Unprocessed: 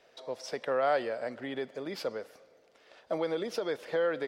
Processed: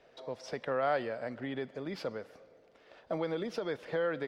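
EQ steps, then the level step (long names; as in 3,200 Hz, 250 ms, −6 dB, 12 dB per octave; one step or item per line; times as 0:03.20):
low-pass filter 3,000 Hz 6 dB per octave
low-shelf EQ 250 Hz +8 dB
dynamic equaliser 460 Hz, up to −5 dB, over −40 dBFS, Q 0.7
0.0 dB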